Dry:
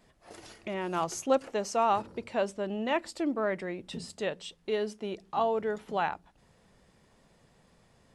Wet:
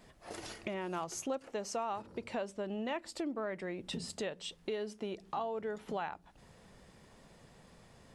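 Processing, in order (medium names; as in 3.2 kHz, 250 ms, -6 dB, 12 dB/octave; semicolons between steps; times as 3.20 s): compression 4:1, threshold -41 dBFS, peak gain reduction 17 dB; trim +4 dB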